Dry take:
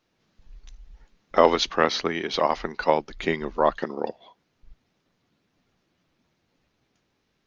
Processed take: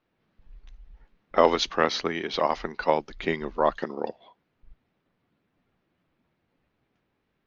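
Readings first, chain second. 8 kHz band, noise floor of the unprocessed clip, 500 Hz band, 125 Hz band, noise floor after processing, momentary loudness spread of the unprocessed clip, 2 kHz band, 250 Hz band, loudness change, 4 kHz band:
can't be measured, −73 dBFS, −2.0 dB, −2.0 dB, −76 dBFS, 11 LU, −2.0 dB, −2.0 dB, −2.0 dB, −2.0 dB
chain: low-pass that shuts in the quiet parts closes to 2,600 Hz, open at −17.5 dBFS
level −2 dB

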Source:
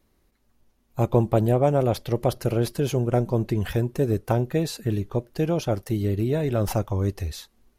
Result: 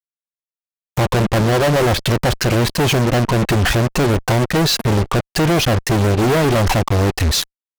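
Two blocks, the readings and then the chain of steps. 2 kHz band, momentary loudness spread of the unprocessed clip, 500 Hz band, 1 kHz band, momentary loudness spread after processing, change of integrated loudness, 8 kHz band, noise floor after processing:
+19.0 dB, 7 LU, +6.0 dB, +11.0 dB, 3 LU, +8.0 dB, +15.5 dB, below −85 dBFS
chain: treble cut that deepens with the level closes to 2,400 Hz, closed at −18 dBFS
in parallel at −0.5 dB: brickwall limiter −19.5 dBFS, peak gain reduction 11.5 dB
on the sum: reverb reduction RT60 1.2 s
fuzz pedal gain 43 dB, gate −39 dBFS

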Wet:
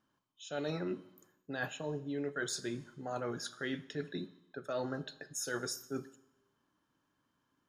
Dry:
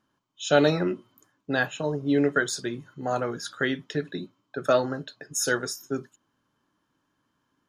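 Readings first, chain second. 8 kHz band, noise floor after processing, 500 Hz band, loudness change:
−9.5 dB, −80 dBFS, −13.5 dB, −12.5 dB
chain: reversed playback
downward compressor 8 to 1, threshold −29 dBFS, peak gain reduction 15.5 dB
reversed playback
four-comb reverb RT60 0.91 s, combs from 29 ms, DRR 16 dB
level −5 dB

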